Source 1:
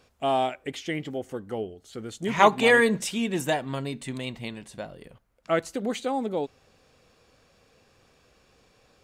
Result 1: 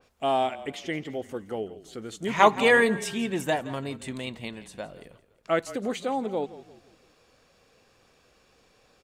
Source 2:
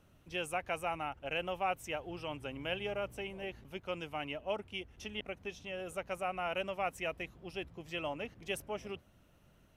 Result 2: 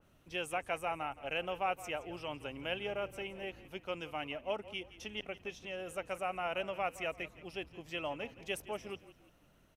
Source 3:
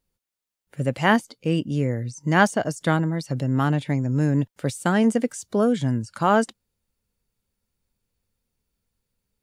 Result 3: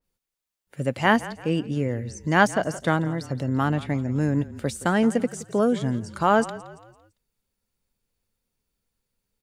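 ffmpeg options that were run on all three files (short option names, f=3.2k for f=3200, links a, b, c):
-filter_complex "[0:a]equalizer=f=83:t=o:w=2.5:g=-4.5,asplit=2[a][b];[b]asplit=4[c][d][e][f];[c]adelay=169,afreqshift=-32,volume=-16.5dB[g];[d]adelay=338,afreqshift=-64,volume=-24.2dB[h];[e]adelay=507,afreqshift=-96,volume=-32dB[i];[f]adelay=676,afreqshift=-128,volume=-39.7dB[j];[g][h][i][j]amix=inputs=4:normalize=0[k];[a][k]amix=inputs=2:normalize=0,adynamicequalizer=threshold=0.00708:dfrequency=2800:dqfactor=0.7:tfrequency=2800:tqfactor=0.7:attack=5:release=100:ratio=0.375:range=2:mode=cutabove:tftype=highshelf"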